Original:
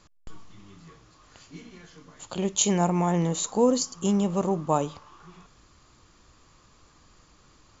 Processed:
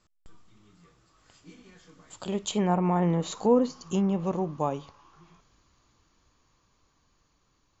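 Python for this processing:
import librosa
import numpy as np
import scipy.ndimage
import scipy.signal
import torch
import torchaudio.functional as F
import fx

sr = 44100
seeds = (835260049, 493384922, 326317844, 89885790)

y = fx.doppler_pass(x, sr, speed_mps=16, closest_m=16.0, pass_at_s=3.28)
y = fx.env_lowpass_down(y, sr, base_hz=2200.0, full_db=-21.0)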